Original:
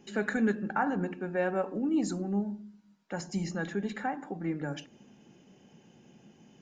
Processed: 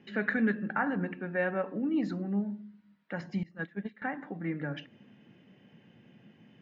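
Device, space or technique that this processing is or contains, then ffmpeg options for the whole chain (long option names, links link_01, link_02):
guitar cabinet: -filter_complex "[0:a]highpass=89,equalizer=frequency=110:width_type=q:width=4:gain=7,equalizer=frequency=380:width_type=q:width=4:gain=-5,equalizer=frequency=810:width_type=q:width=4:gain=-6,equalizer=frequency=1900:width_type=q:width=4:gain=7,lowpass=frequency=3700:width=0.5412,lowpass=frequency=3700:width=1.3066,asettb=1/sr,asplit=3[link_01][link_02][link_03];[link_01]atrim=end=3.434[link_04];[link_02]atrim=start=3.43:end=4.02,asetpts=PTS-STARTPTS,afade=type=in:duration=0.004:curve=qsin,afade=type=out:start_time=0.586:duration=0.004:curve=qsin,agate=range=-20dB:threshold=-31dB:ratio=16:detection=peak[link_05];[link_03]atrim=start=4.016[link_06];[link_04][link_05]acrossfade=duration=0.004:curve1=hsin:curve2=qsin[link_07];[link_07][link_06]acrossfade=duration=0.004:curve1=qsin:curve2=hsin"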